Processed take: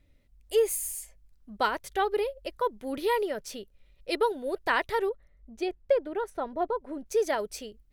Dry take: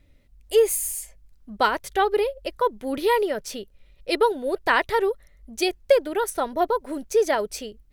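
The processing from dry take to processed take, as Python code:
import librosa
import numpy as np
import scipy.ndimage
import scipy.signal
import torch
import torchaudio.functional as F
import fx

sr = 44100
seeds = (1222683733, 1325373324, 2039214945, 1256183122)

y = fx.lowpass(x, sr, hz=1300.0, slope=6, at=(5.09, 7.06))
y = y * 10.0 ** (-6.0 / 20.0)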